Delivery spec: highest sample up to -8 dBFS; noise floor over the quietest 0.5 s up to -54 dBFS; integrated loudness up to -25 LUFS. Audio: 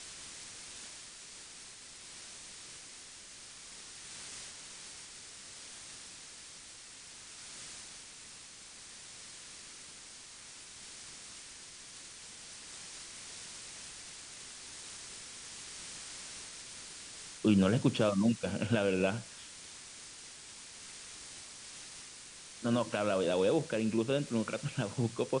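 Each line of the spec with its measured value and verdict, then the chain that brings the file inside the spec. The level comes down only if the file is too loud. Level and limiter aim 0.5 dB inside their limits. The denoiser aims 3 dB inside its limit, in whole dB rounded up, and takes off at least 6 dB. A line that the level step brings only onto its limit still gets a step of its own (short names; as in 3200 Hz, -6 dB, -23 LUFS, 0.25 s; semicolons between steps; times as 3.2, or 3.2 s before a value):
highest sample -15.0 dBFS: OK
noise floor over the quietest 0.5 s -51 dBFS: fail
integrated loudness -38.0 LUFS: OK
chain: denoiser 6 dB, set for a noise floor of -51 dBFS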